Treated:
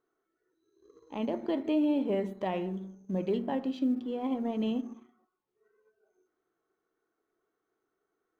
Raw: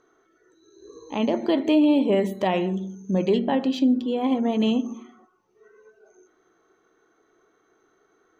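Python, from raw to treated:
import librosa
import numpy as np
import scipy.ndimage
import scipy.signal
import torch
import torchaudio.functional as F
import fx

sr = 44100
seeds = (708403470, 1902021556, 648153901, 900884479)

y = fx.law_mismatch(x, sr, coded='A')
y = fx.high_shelf(y, sr, hz=3700.0, db=-11.0)
y = F.gain(torch.from_numpy(y), -8.5).numpy()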